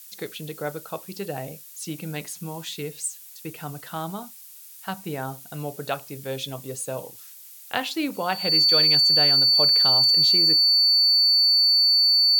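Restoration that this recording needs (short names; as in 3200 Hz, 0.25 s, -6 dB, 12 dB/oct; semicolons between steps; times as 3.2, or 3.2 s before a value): notch 4500 Hz, Q 30; noise print and reduce 23 dB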